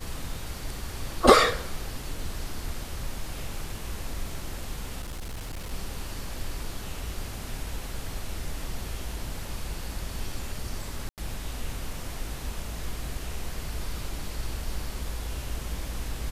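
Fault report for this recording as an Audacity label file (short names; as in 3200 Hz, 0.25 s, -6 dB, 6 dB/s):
5.020000	5.730000	clipped -32 dBFS
11.090000	11.180000	gap 88 ms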